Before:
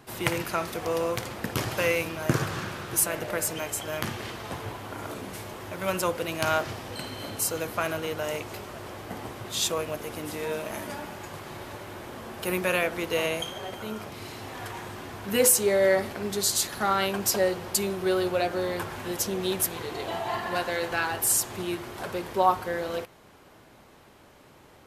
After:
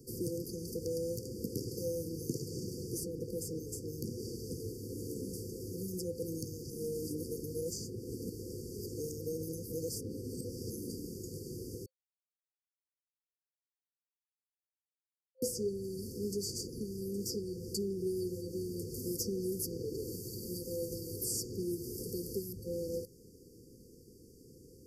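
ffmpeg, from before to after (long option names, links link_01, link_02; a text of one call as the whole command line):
ffmpeg -i in.wav -filter_complex "[0:a]asettb=1/sr,asplit=3[link_01][link_02][link_03];[link_01]atrim=end=18.944[link_04];[link_02]atrim=start=18.94:end=22.53,asetpts=PTS-STARTPTS,afade=type=in:duration=0.004:curve=qsin,afade=type=out:start_time=3.586:duration=0.004:curve=qsin,aemphasis=mode=production:type=75kf[link_05];[link_03]atrim=start=22.526[link_06];[link_04][link_05]acrossfade=duration=0.004:curve1=hsin:curve2=qsin[link_07];[link_07][link_06]acrossfade=duration=0.004:curve1=qsin:curve2=hsin,asplit=5[link_08][link_09][link_10][link_11][link_12];[link_08]atrim=end=6.702[link_13];[link_09]atrim=start=6.698:end=10.702,asetpts=PTS-STARTPTS,areverse[link_14];[link_10]atrim=start=10.698:end=11.86,asetpts=PTS-STARTPTS,afade=type=out:start_time=1.158:duration=0.004:curve=hsin[link_15];[link_11]atrim=start=11.86:end=15.42,asetpts=PTS-STARTPTS,volume=0[link_16];[link_12]atrim=start=15.42,asetpts=PTS-STARTPTS,afade=type=in:duration=0.004:curve=hsin[link_17];[link_13][link_14]acrossfade=duration=0.004:curve1=hsin:curve2=hsin[link_18];[link_15][link_16][link_17]concat=n=3:v=0:a=1[link_19];[link_18][link_19]acrossfade=duration=0.004:curve1=hsin:curve2=hsin,acrossover=split=200|1100|4000[link_20][link_21][link_22][link_23];[link_20]acompressor=threshold=-43dB:ratio=4[link_24];[link_21]acompressor=threshold=-36dB:ratio=4[link_25];[link_22]acompressor=threshold=-37dB:ratio=4[link_26];[link_23]acompressor=threshold=-47dB:ratio=4[link_27];[link_24][link_25][link_26][link_27]amix=inputs=4:normalize=0,afftfilt=real='re*(1-between(b*sr/4096,520,4500))':imag='im*(1-between(b*sr/4096,520,4500))':win_size=4096:overlap=0.75" out.wav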